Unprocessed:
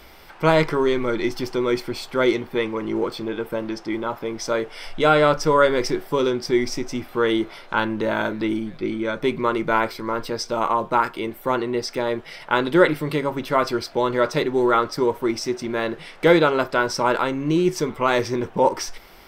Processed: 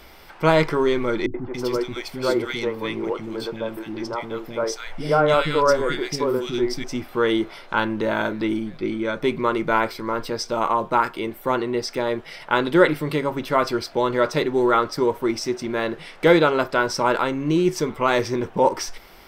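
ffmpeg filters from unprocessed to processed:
ffmpeg -i in.wav -filter_complex "[0:a]asettb=1/sr,asplit=3[link_01][link_02][link_03];[link_01]atrim=end=1.264[link_04];[link_02]atrim=start=1.26:end=6.84,asetpts=PTS-STARTPTS,afade=type=in:duration=0.004:curve=qsin,afade=type=out:start_time=5.576:duration=0.004:curve=qsin,acrossover=split=310|1600[link_05][link_06][link_07];[link_06]adelay=80[link_08];[link_07]adelay=280[link_09];[link_05][link_08][link_09]amix=inputs=3:normalize=0,atrim=end_sample=246078[link_10];[link_03]atrim=start=6.836[link_11];[link_04][link_10]acrossfade=duration=0.004:curve1=hsin:curve2=qsin[link_12];[link_12][link_11]acrossfade=duration=0.004:curve1=qsin:curve2=hsin" out.wav

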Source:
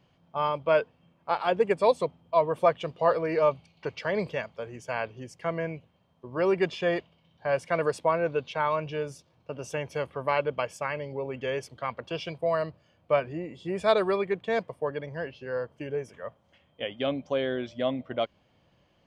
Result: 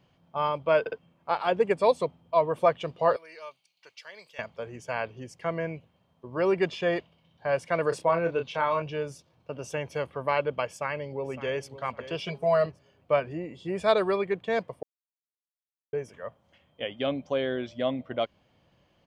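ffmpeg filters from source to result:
ffmpeg -i in.wav -filter_complex "[0:a]asettb=1/sr,asplit=3[link_01][link_02][link_03];[link_01]atrim=end=3.164[link_04];[link_02]atrim=start=3.16:end=4.39,asetpts=PTS-STARTPTS,afade=type=in:duration=0.004:curve=qsin,afade=type=out:start_time=1.226:duration=0.004:curve=qsin,aderivative[link_05];[link_03]atrim=start=4.386[link_06];[link_04][link_05]acrossfade=duration=0.004:curve1=hsin:curve2=qsin[link_07];[link_07][link_06]acrossfade=duration=0.004:curve1=qsin:curve2=hsin,asettb=1/sr,asplit=3[link_08][link_09][link_10];[link_08]atrim=end=7.894[link_11];[link_09]atrim=start=7.89:end=8.82,asetpts=PTS-STARTPTS,afade=type=in:duration=0.004:curve=qsin,afade=type=out:start_time=0.926:duration=0.004:curve=qsin,asplit=2[link_12][link_13];[link_13]adelay=30,volume=-7dB[link_14];[link_12][link_14]amix=inputs=2:normalize=0,atrim=end_sample=41013[link_15];[link_10]atrim=start=8.816[link_16];[link_11][link_15]acrossfade=duration=0.004:curve1=hsin:curve2=qsin[link_17];[link_17][link_16]acrossfade=duration=0.004:curve1=qsin:curve2=hsin,asplit=2[link_18][link_19];[link_19]afade=type=in:start_time=10.67:duration=0.01,afade=type=out:start_time=11.69:duration=0.01,aecho=0:1:560|1120|1680:0.199526|0.0598579|0.0179574[link_20];[link_18][link_20]amix=inputs=2:normalize=0,asettb=1/sr,asplit=3[link_21][link_22][link_23];[link_21]atrim=end=12.234[link_24];[link_22]atrim=start=12.23:end=12.66,asetpts=PTS-STARTPTS,afade=type=in:duration=0.004:curve=qsin,afade=type=out:start_time=0.426:duration=0.004:curve=qsin,aecho=1:1:4.8:0.99,atrim=end_sample=18963[link_25];[link_23]atrim=start=12.656[link_26];[link_24][link_25]acrossfade=duration=0.004:curve1=hsin:curve2=qsin[link_27];[link_27][link_26]acrossfade=duration=0.004:curve1=qsin:curve2=hsin,asplit=6[link_28][link_29][link_30][link_31][link_32][link_33];[link_28]atrim=end=0.862[link_34];[link_29]atrim=start=0.798:end=0.862[link_35];[link_30]atrim=start=0.798:end=0.862[link_36];[link_31]atrim=start=0.978:end=14.83,asetpts=PTS-STARTPTS,afade=type=out:start_time=13.848:duration=0.004:curve=hsin[link_37];[link_32]atrim=start=14.83:end=15.93,asetpts=PTS-STARTPTS,volume=0[link_38];[link_33]atrim=start=15.93,asetpts=PTS-STARTPTS,afade=type=in:duration=0.004:curve=hsin[link_39];[link_34][link_35]acrossfade=duration=0.004:curve1=hsin:curve2=hsin[link_40];[link_40][link_36]acrossfade=duration=0.004:curve1=hsin:curve2=hsin[link_41];[link_37][link_38][link_39]concat=n=3:v=0:a=1[link_42];[link_41][link_42]acrossfade=duration=0.004:curve1=hsin:curve2=hsin" out.wav

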